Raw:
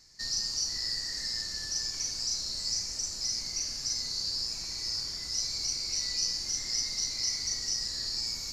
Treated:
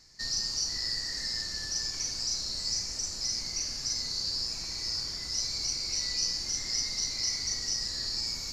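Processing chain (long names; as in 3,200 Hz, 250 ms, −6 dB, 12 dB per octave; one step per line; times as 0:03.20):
high-shelf EQ 5,200 Hz −5.5 dB
level +3 dB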